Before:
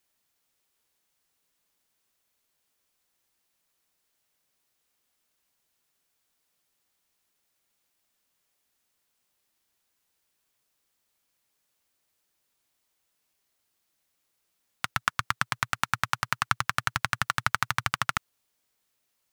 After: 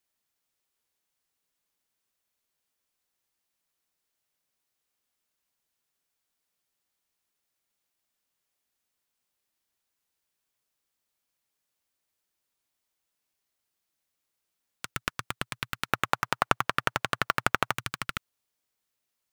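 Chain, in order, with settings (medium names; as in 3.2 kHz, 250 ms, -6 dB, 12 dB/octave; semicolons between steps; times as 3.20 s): tracing distortion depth 0.49 ms; 15.88–17.74 s: peaking EQ 740 Hz +12.5 dB 2.5 oct; trim -6 dB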